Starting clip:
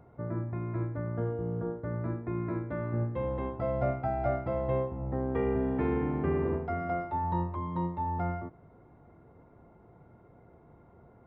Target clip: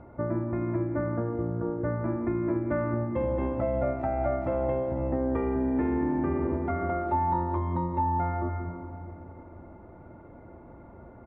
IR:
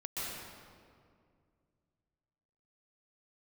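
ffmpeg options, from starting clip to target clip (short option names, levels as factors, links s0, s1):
-filter_complex "[0:a]lowpass=2200,asplit=2[s0][s1];[s1]adelay=170,highpass=300,lowpass=3400,asoftclip=type=hard:threshold=0.0501,volume=0.0562[s2];[s0][s2]amix=inputs=2:normalize=0,asplit=2[s3][s4];[1:a]atrim=start_sample=2205,asetrate=39690,aresample=44100[s5];[s4][s5]afir=irnorm=-1:irlink=0,volume=0.251[s6];[s3][s6]amix=inputs=2:normalize=0,acompressor=threshold=0.0251:ratio=6,aecho=1:1:3.4:0.46,volume=2.24"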